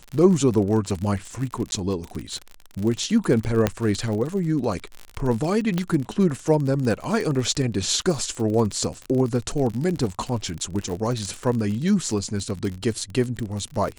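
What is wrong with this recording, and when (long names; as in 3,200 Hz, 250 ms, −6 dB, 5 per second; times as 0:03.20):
surface crackle 47 per second −27 dBFS
0:01.71–0:01.72: drop-out 11 ms
0:03.67: click −5 dBFS
0:05.78: click −11 dBFS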